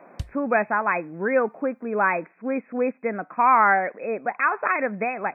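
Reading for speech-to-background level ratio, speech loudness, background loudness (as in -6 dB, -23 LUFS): 15.5 dB, -23.5 LUFS, -39.0 LUFS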